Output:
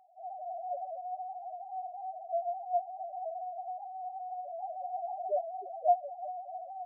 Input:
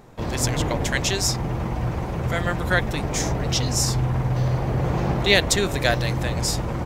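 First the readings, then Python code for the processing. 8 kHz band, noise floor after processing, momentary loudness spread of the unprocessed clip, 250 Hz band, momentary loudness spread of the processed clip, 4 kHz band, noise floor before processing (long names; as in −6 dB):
below −40 dB, −47 dBFS, 8 LU, below −40 dB, 10 LU, below −40 dB, −28 dBFS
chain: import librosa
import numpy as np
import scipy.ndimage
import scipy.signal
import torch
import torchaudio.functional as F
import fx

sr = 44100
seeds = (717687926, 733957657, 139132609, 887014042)

y = scipy.signal.sosfilt(scipy.signal.ellip(3, 1.0, 40, [270.0, 720.0], 'bandpass', fs=sr, output='sos'), x)
y = fx.low_shelf_res(y, sr, hz=550.0, db=-13.5, q=3.0)
y = fx.spec_topn(y, sr, count=1)
y = F.gain(torch.from_numpy(y), 5.0).numpy()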